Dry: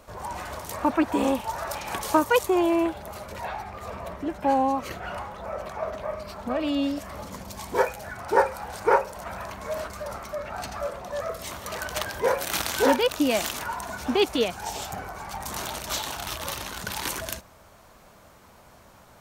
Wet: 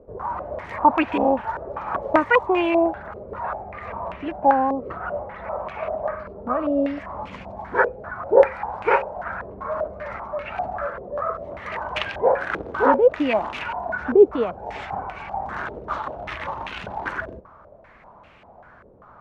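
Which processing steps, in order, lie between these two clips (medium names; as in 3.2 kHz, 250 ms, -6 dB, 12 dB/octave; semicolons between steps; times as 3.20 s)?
step-sequenced low-pass 5.1 Hz 450–2600 Hz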